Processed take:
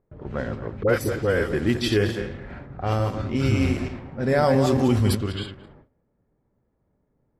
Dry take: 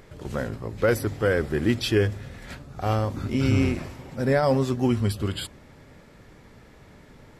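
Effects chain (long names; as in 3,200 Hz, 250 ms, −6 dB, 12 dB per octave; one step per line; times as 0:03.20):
feedback delay that plays each chunk backwards 111 ms, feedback 40%, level −6 dB
noise gate with hold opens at −36 dBFS
low-pass that shuts in the quiet parts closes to 850 Hz, open at −18.5 dBFS
0:00.83–0:01.53: all-pass dispersion highs, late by 52 ms, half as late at 680 Hz
0:02.04–0:02.74: double-tracking delay 45 ms −3 dB
0:04.38–0:05.15: envelope flattener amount 70%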